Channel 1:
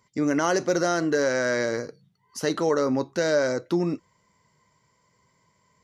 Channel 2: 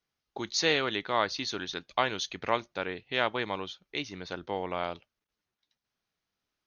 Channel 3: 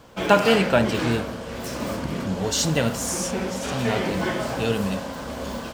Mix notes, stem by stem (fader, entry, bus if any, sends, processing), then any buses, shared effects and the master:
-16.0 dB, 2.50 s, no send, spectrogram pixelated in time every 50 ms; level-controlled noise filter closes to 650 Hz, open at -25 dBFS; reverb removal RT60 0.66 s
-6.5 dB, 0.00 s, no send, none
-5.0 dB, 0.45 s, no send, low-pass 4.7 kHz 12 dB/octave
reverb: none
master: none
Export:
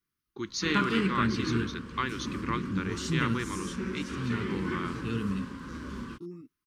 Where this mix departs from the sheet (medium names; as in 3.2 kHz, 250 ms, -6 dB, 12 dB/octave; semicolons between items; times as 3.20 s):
stem 2 -6.5 dB -> +1.5 dB; master: extra FFT filter 360 Hz 0 dB, 690 Hz -30 dB, 1.1 kHz -1 dB, 3.6 kHz -8 dB, 6.7 kHz -5 dB, 10 kHz +5 dB